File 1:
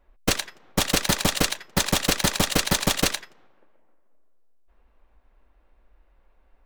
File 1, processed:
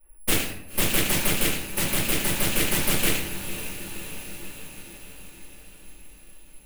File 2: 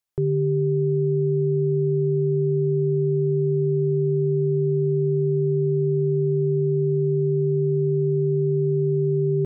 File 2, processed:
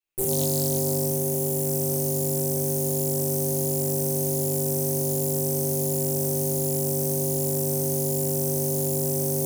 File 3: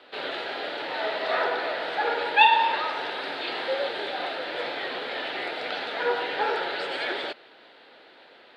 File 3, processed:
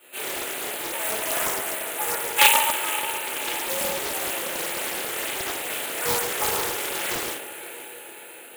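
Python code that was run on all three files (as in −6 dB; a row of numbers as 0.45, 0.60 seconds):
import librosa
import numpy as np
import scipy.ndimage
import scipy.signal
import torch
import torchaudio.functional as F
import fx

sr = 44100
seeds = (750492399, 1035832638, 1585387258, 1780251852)

p1 = fx.high_shelf(x, sr, hz=5200.0, db=-9.0)
p2 = (np.kron(p1[::4], np.eye(4)[0]) * 4)[:len(p1)]
p3 = fx.peak_eq(p2, sr, hz=2600.0, db=12.0, octaves=0.27)
p4 = p3 + fx.echo_diffused(p3, sr, ms=528, feedback_pct=60, wet_db=-13.0, dry=0)
p5 = fx.room_shoebox(p4, sr, seeds[0], volume_m3=100.0, walls='mixed', distance_m=2.5)
p6 = fx.rider(p5, sr, range_db=3, speed_s=2.0)
p7 = fx.doppler_dist(p6, sr, depth_ms=0.66)
y = p7 * librosa.db_to_amplitude(-14.0)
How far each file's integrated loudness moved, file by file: −1.5, −2.0, +2.5 LU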